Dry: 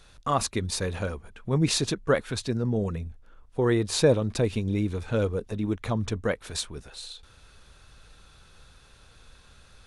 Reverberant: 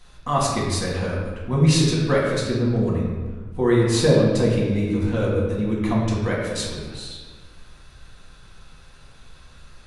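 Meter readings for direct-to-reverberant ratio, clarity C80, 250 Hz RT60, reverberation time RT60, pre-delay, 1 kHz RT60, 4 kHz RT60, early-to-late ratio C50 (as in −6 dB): −5.5 dB, 2.5 dB, 2.0 s, 1.4 s, 4 ms, 1.3 s, 1.0 s, 0.5 dB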